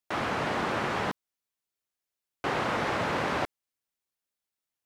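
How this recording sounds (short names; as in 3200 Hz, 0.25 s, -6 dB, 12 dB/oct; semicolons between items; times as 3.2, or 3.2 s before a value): noise floor -89 dBFS; spectral tilt -3.0 dB/oct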